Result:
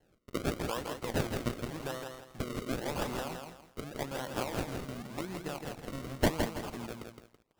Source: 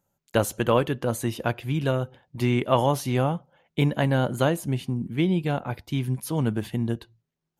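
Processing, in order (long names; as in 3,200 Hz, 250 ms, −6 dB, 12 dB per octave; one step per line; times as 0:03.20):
high-pass filter 96 Hz 12 dB per octave
downward compressor 6 to 1, threshold −30 dBFS, peak gain reduction 14.5 dB
RIAA equalisation recording
sample-and-hold swept by an LFO 36×, swing 100% 0.88 Hz
feedback echo at a low word length 165 ms, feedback 35%, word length 10 bits, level −5 dB
level −1.5 dB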